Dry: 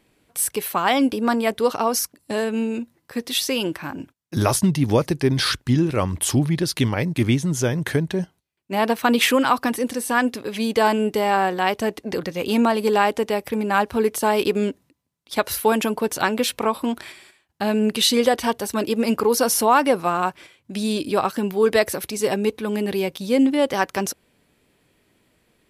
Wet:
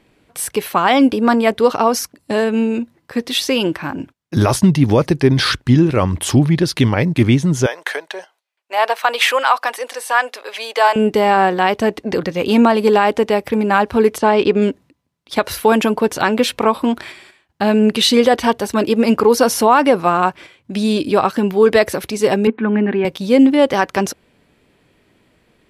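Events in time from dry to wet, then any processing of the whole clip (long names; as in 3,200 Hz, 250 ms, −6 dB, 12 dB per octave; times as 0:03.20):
0:07.66–0:10.96: high-pass filter 580 Hz 24 dB per octave
0:14.18–0:14.62: high-frequency loss of the air 98 metres
0:22.47–0:23.05: loudspeaker in its box 220–2,400 Hz, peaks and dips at 230 Hz +10 dB, 520 Hz −8 dB, 1,600 Hz +6 dB
whole clip: high-shelf EQ 6,800 Hz −12 dB; boost into a limiter +8 dB; level −1 dB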